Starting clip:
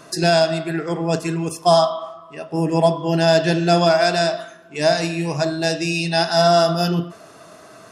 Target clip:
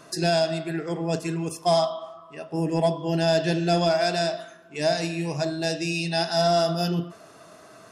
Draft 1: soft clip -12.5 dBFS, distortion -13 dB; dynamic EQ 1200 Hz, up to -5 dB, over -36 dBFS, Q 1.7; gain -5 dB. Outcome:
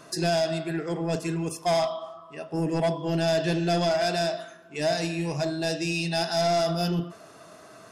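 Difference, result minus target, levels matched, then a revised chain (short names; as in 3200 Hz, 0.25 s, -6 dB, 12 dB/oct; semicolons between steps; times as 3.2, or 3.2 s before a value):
soft clip: distortion +14 dB
soft clip -3 dBFS, distortion -27 dB; dynamic EQ 1200 Hz, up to -5 dB, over -36 dBFS, Q 1.7; gain -5 dB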